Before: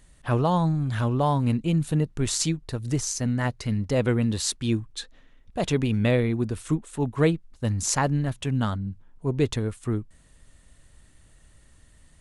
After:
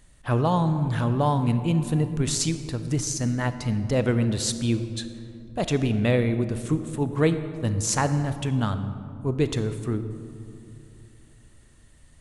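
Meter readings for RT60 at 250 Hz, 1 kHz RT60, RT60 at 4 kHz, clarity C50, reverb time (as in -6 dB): 3.3 s, 2.5 s, 1.2 s, 10.5 dB, 2.7 s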